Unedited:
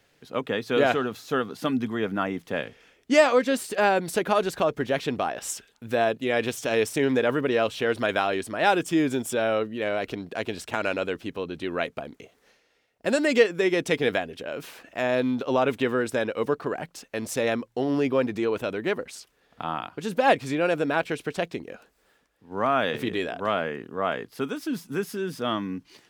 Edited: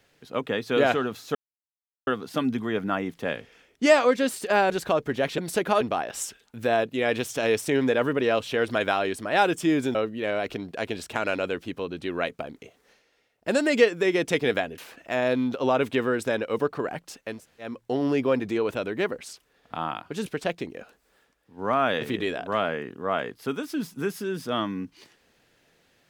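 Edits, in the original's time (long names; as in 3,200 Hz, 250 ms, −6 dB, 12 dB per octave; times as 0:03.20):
0:01.35: splice in silence 0.72 s
0:03.98–0:04.41: move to 0:05.09
0:09.23–0:09.53: remove
0:14.36–0:14.65: remove
0:17.21–0:17.57: fill with room tone, crossfade 0.24 s
0:20.13–0:21.19: remove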